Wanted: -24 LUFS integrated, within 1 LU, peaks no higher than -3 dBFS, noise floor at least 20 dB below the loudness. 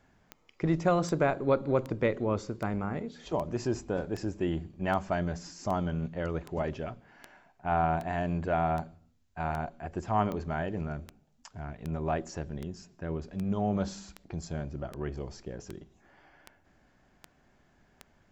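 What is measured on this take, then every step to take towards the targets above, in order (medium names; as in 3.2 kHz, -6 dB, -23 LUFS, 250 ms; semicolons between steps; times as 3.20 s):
clicks found 24; loudness -32.5 LUFS; peak level -13.5 dBFS; loudness target -24.0 LUFS
-> de-click; trim +8.5 dB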